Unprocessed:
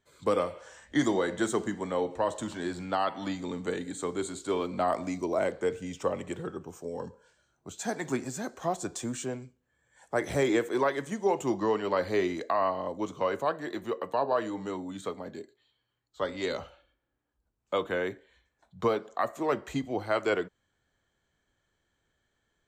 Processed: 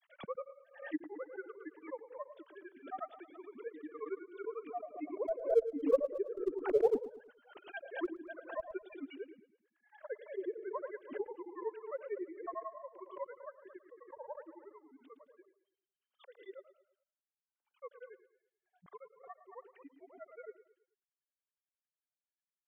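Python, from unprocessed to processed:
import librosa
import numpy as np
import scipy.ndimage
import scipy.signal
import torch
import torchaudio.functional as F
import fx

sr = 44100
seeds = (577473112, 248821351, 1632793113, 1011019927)

p1 = fx.sine_speech(x, sr)
p2 = fx.doppler_pass(p1, sr, speed_mps=6, closest_m=1.3, pass_at_s=6.89)
p3 = fx.env_lowpass_down(p2, sr, base_hz=540.0, full_db=-45.5)
p4 = fx.schmitt(p3, sr, flips_db=-40.5)
p5 = p3 + F.gain(torch.from_numpy(p4), -11.5).numpy()
p6 = fx.granulator(p5, sr, seeds[0], grain_ms=72.0, per_s=11.0, spray_ms=22.0, spread_st=0)
p7 = p6 + fx.echo_feedback(p6, sr, ms=109, feedback_pct=41, wet_db=-14.5, dry=0)
p8 = fx.pre_swell(p7, sr, db_per_s=130.0)
y = F.gain(torch.from_numpy(p8), 16.5).numpy()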